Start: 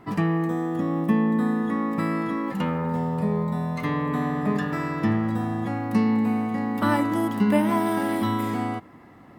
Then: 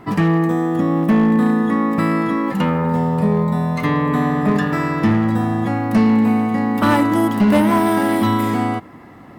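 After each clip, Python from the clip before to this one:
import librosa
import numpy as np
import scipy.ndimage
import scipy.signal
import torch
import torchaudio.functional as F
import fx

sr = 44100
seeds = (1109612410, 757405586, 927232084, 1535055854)

y = np.clip(x, -10.0 ** (-17.0 / 20.0), 10.0 ** (-17.0 / 20.0))
y = F.gain(torch.from_numpy(y), 8.0).numpy()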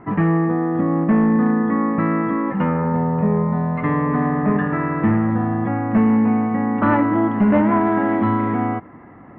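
y = scipy.signal.sosfilt(scipy.signal.cheby2(4, 60, 6600.0, 'lowpass', fs=sr, output='sos'), x)
y = F.gain(torch.from_numpy(y), -1.5).numpy()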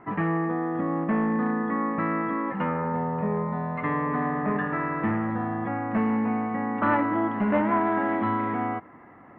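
y = fx.low_shelf(x, sr, hz=350.0, db=-9.5)
y = F.gain(torch.from_numpy(y), -3.0).numpy()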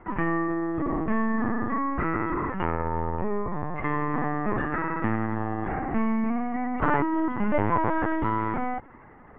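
y = fx.lpc_vocoder(x, sr, seeds[0], excitation='pitch_kept', order=16)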